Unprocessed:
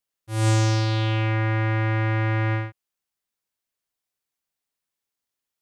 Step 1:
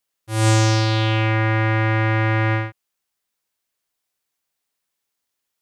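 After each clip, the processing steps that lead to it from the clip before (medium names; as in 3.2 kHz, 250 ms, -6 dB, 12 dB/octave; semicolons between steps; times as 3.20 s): bass shelf 280 Hz -4 dB; trim +6.5 dB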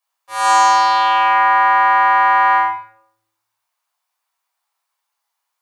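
resonant high-pass 900 Hz, resonance Q 4.9; simulated room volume 1000 m³, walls furnished, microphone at 5.8 m; trim -4.5 dB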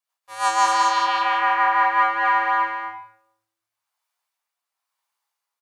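rotary cabinet horn 6 Hz, later 1 Hz, at 1.64 s; on a send: delay 233 ms -3 dB; on the sum: trim -4 dB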